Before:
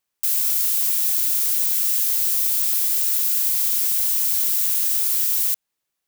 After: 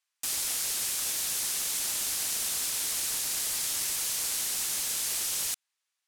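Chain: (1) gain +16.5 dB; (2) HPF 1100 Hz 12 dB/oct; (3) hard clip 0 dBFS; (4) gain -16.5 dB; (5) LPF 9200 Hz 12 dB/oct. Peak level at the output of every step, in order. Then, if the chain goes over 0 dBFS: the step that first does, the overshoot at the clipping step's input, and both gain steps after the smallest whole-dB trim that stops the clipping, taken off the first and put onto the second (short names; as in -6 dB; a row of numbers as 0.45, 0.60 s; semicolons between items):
+9.0, +9.5, 0.0, -16.5, -18.0 dBFS; step 1, 9.5 dB; step 1 +6.5 dB, step 4 -6.5 dB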